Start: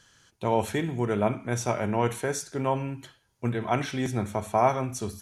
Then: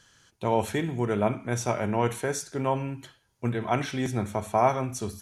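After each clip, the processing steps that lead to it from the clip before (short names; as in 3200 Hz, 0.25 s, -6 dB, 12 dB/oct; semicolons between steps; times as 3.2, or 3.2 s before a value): nothing audible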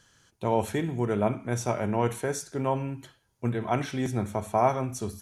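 bell 3000 Hz -3.5 dB 2.8 oct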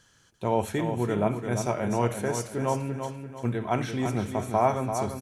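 feedback echo 0.341 s, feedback 38%, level -7.5 dB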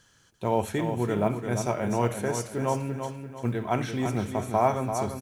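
companded quantiser 8-bit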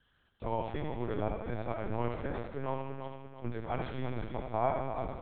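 thinning echo 78 ms, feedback 57%, high-pass 200 Hz, level -6 dB; LPC vocoder at 8 kHz pitch kept; gain -8.5 dB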